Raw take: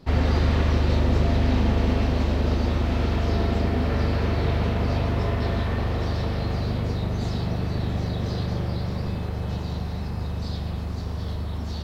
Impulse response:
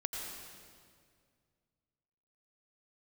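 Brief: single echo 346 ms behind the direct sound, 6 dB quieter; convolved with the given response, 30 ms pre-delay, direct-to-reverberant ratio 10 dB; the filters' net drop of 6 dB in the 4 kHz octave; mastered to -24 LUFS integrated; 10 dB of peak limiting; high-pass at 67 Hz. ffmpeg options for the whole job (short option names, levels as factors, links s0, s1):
-filter_complex "[0:a]highpass=67,equalizer=f=4000:t=o:g=-7.5,alimiter=limit=0.0891:level=0:latency=1,aecho=1:1:346:0.501,asplit=2[s0][s1];[1:a]atrim=start_sample=2205,adelay=30[s2];[s1][s2]afir=irnorm=-1:irlink=0,volume=0.251[s3];[s0][s3]amix=inputs=2:normalize=0,volume=1.68"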